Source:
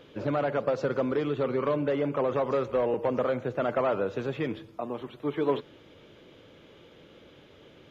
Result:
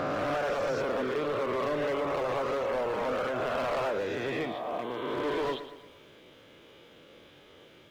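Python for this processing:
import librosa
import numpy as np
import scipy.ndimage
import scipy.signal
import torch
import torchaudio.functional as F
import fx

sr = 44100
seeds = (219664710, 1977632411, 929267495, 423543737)

y = fx.spec_swells(x, sr, rise_s=2.66)
y = fx.low_shelf(y, sr, hz=380.0, db=-7.0)
y = np.clip(10.0 ** (25.5 / 20.0) * y, -1.0, 1.0) / 10.0 ** (25.5 / 20.0)
y = fx.dereverb_blind(y, sr, rt60_s=0.68)
y = fx.echo_crushed(y, sr, ms=115, feedback_pct=55, bits=10, wet_db=-12)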